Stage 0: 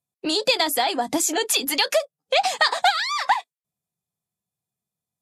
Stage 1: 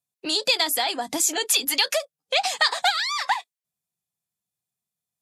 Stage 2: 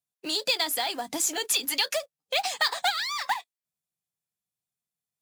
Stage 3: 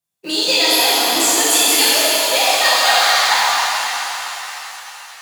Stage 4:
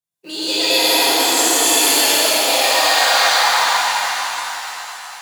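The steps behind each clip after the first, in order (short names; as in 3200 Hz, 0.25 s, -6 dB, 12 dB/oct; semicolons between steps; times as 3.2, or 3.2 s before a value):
tilt shelf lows -4 dB, about 1400 Hz; gain -2.5 dB
short-mantissa float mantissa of 2-bit; gain -4.5 dB
shimmer reverb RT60 3.9 s, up +7 st, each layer -8 dB, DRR -10.5 dB; gain +3 dB
plate-style reverb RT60 2.3 s, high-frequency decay 0.75×, pre-delay 90 ms, DRR -7.5 dB; gain -8 dB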